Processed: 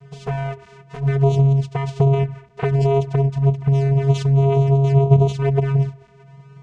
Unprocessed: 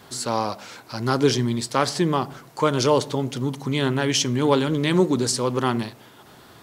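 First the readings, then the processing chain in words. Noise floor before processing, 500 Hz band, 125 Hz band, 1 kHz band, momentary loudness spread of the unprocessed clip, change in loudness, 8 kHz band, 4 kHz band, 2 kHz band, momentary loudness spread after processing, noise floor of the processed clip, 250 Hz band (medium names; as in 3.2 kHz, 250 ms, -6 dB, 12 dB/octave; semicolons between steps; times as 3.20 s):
-49 dBFS, +1.5 dB, +12.5 dB, -3.0 dB, 9 LU, +4.0 dB, under -15 dB, under -10 dB, -6.0 dB, 11 LU, -48 dBFS, -0.5 dB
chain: tracing distortion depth 0.031 ms; dynamic bell 450 Hz, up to +4 dB, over -31 dBFS, Q 2.5; short-mantissa float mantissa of 2-bit; treble shelf 2.8 kHz -10 dB; peak limiter -12 dBFS, peak gain reduction 7.5 dB; harmonic-percussive split percussive +6 dB; vocoder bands 4, square 137 Hz; touch-sensitive flanger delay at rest 7.6 ms, full sweep at -17 dBFS; trim +5.5 dB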